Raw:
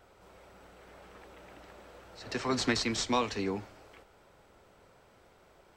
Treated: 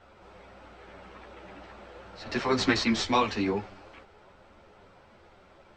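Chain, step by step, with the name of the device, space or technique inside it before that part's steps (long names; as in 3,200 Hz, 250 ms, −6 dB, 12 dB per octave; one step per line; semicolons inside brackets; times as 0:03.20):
string-machine ensemble chorus (string-ensemble chorus; low-pass filter 4,600 Hz 12 dB per octave)
notch filter 450 Hz, Q 14
level +8.5 dB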